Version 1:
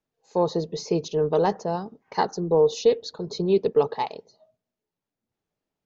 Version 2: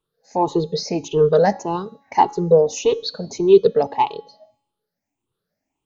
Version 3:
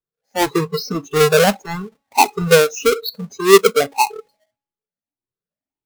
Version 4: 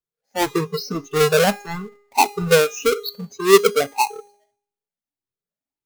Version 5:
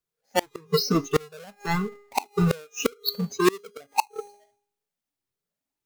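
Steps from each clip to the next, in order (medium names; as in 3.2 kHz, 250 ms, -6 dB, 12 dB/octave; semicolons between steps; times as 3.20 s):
drifting ripple filter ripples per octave 0.65, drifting +1.7 Hz, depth 17 dB; feedback comb 280 Hz, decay 0.79 s, mix 50%; trim +8 dB
square wave that keeps the level; spectral noise reduction 19 dB; trim -1 dB
feedback comb 410 Hz, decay 0.66 s, mix 60%; trim +4.5 dB
inverted gate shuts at -14 dBFS, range -32 dB; trim +4 dB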